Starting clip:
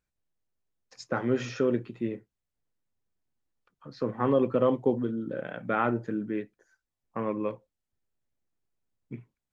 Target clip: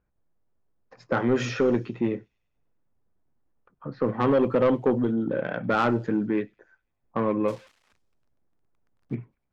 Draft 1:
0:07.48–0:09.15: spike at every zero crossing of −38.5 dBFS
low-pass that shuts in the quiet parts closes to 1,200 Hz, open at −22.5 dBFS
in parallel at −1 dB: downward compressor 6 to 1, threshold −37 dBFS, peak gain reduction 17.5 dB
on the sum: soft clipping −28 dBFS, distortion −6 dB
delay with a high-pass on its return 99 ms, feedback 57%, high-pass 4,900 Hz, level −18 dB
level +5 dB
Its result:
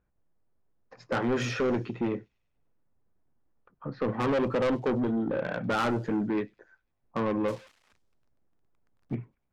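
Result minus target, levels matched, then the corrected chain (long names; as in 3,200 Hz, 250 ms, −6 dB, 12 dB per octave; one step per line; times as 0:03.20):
soft clipping: distortion +7 dB
0:07.48–0:09.15: spike at every zero crossing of −38.5 dBFS
low-pass that shuts in the quiet parts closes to 1,200 Hz, open at −22.5 dBFS
in parallel at −1 dB: downward compressor 6 to 1, threshold −37 dBFS, peak gain reduction 17.5 dB
on the sum: soft clipping −19.5 dBFS, distortion −13 dB
delay with a high-pass on its return 99 ms, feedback 57%, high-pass 4,900 Hz, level −18 dB
level +5 dB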